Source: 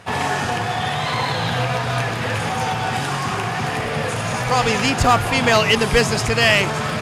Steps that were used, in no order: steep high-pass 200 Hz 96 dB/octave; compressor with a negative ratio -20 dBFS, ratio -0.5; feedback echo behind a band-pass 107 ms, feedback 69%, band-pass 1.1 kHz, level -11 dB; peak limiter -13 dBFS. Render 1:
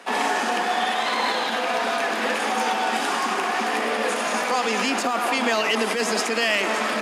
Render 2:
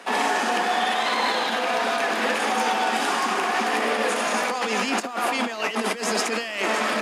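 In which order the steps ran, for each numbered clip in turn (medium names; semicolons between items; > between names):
feedback echo behind a band-pass > peak limiter > compressor with a negative ratio > steep high-pass; feedback echo behind a band-pass > compressor with a negative ratio > peak limiter > steep high-pass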